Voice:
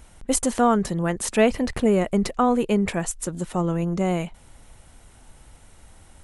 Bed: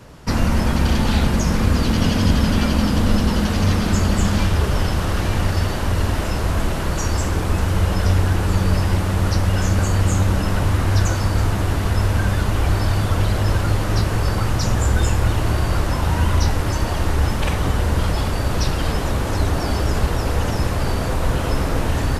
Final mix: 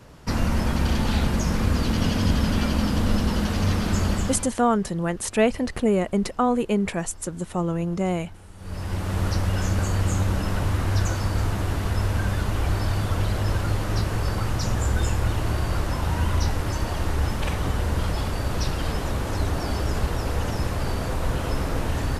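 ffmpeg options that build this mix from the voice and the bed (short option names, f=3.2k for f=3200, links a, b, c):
-filter_complex "[0:a]adelay=4000,volume=-1.5dB[a];[1:a]volume=17.5dB,afade=t=out:st=4.11:d=0.41:silence=0.0707946,afade=t=in:st=8.57:d=0.61:silence=0.0749894[b];[a][b]amix=inputs=2:normalize=0"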